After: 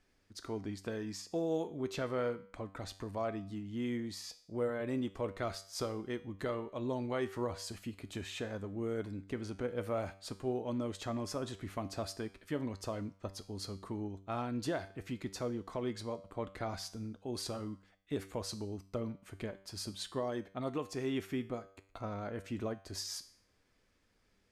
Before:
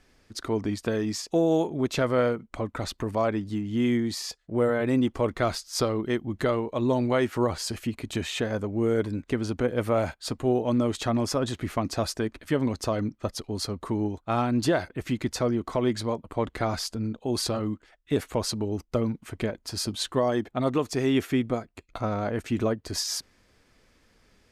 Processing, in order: resonator 97 Hz, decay 0.55 s, harmonics all, mix 60%; gain -5.5 dB

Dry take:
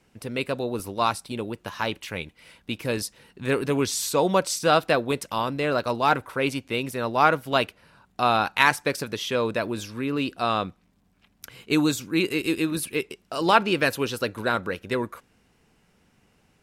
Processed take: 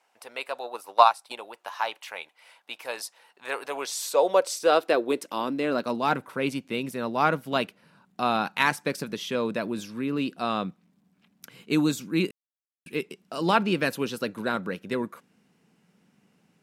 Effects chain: 0.63–1.38 transient shaper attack +11 dB, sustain -5 dB; high-pass sweep 780 Hz -> 180 Hz, 3.57–6.17; 12.31–12.86 mute; gain -4.5 dB

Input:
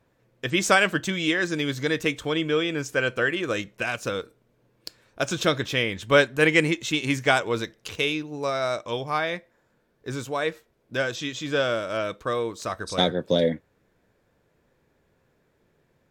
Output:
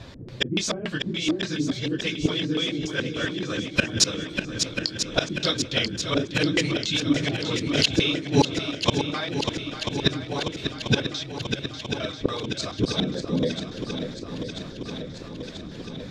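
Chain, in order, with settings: phase scrambler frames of 50 ms; tone controls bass +6 dB, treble +12 dB; 8.58–9.1 level quantiser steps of 16 dB; LFO low-pass square 3.5 Hz 310–4100 Hz; flipped gate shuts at -22 dBFS, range -27 dB; 11.23–11.99 brick-wall FIR band-stop 150–9700 Hz; swung echo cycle 0.988 s, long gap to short 1.5:1, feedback 66%, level -9 dB; maximiser +25 dB; 7.13–7.96 backwards sustainer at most 53 dB/s; gain -5 dB

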